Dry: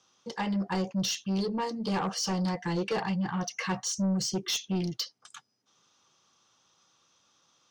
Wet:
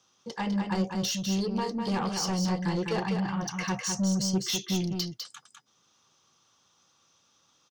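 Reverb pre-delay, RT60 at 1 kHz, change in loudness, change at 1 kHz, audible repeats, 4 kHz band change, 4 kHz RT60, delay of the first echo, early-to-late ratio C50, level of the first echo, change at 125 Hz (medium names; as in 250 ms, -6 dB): no reverb, no reverb, +1.5 dB, +0.5 dB, 1, +1.0 dB, no reverb, 202 ms, no reverb, -5.5 dB, +2.0 dB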